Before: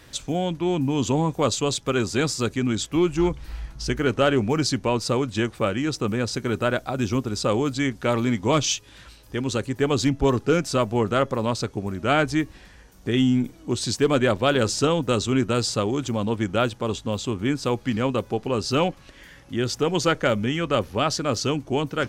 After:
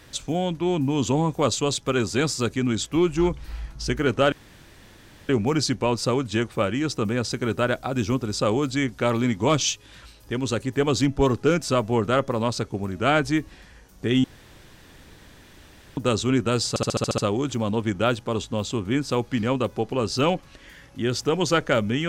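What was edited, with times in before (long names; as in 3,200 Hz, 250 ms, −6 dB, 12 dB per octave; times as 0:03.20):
0:04.32: splice in room tone 0.97 s
0:13.27–0:15.00: fill with room tone
0:15.72: stutter 0.07 s, 8 plays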